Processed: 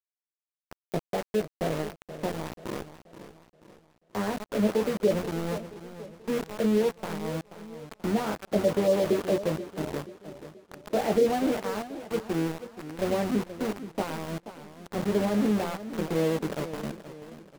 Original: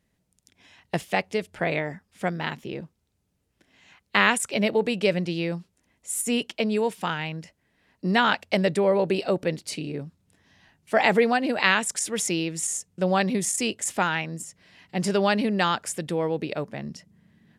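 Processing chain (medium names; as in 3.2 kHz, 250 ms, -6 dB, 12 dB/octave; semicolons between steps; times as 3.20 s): in parallel at -1 dB: compression 16:1, threshold -35 dBFS, peak gain reduction 21.5 dB; on the sum: Butterworth band-pass 300 Hz, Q 0.6; AM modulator 89 Hz, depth 15%; doubling 19 ms -4.5 dB; pre-echo 229 ms -13 dB; small samples zeroed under -28 dBFS; modulated delay 481 ms, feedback 44%, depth 124 cents, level -13 dB; trim -2 dB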